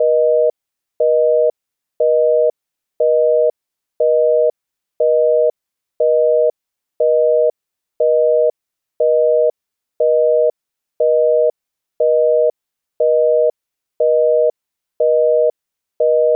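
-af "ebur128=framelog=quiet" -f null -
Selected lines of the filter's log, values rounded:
Integrated loudness:
  I:         -15.4 LUFS
  Threshold: -25.4 LUFS
Loudness range:
  LRA:         0.0 LU
  Threshold: -36.4 LUFS
  LRA low:   -16.4 LUFS
  LRA high:  -16.4 LUFS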